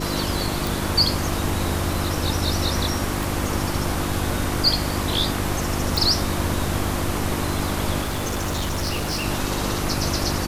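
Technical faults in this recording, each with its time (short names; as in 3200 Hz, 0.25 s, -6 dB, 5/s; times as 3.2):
crackle 19/s -29 dBFS
hum 50 Hz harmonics 7 -28 dBFS
0.67 pop
3.23 pop
5.97 pop
8.01–9.26 clipped -21 dBFS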